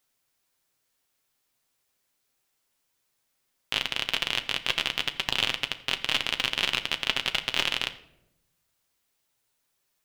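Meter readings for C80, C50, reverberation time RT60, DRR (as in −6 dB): 17.0 dB, 14.5 dB, 0.90 s, 7.0 dB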